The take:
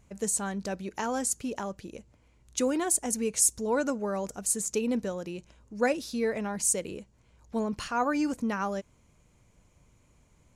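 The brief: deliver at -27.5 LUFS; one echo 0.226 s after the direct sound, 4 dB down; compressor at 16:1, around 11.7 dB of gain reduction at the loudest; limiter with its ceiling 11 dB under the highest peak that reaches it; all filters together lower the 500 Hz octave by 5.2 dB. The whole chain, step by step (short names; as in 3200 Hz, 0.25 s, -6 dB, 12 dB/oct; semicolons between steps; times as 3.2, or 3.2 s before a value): bell 500 Hz -6 dB; compressor 16:1, threshold -30 dBFS; limiter -30.5 dBFS; echo 0.226 s -4 dB; gain +11 dB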